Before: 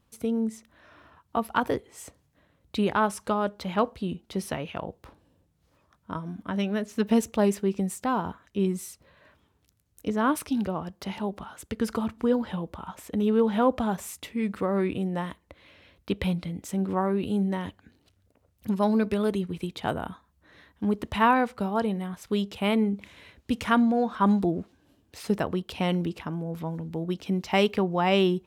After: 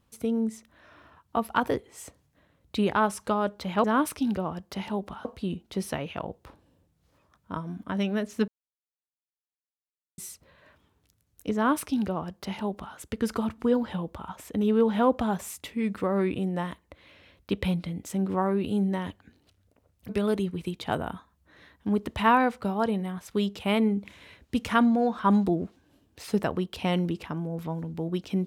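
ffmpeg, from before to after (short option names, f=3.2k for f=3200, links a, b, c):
-filter_complex "[0:a]asplit=6[a][b][c][d][e][f];[a]atrim=end=3.842[g];[b]atrim=start=10.138:end=11.552[h];[c]atrim=start=3.838:end=7.07,asetpts=PTS-STARTPTS,afade=t=out:st=3.228:d=0.004:c=hsin[i];[d]atrim=start=7.07:end=8.77,asetpts=PTS-STARTPTS,volume=0[j];[e]atrim=start=8.77:end=18.682,asetpts=PTS-STARTPTS,afade=t=in:d=0.004:c=hsin[k];[f]atrim=start=19.048[l];[g][h]acrossfade=d=0.004:c1=hsin:c2=hsin[m];[i][j][k]concat=n=3:v=0:a=1[n];[m][n]acrossfade=d=0.004:c1=hsin:c2=hsin[o];[o][l]acrossfade=d=0.004:c1=hsin:c2=hsin"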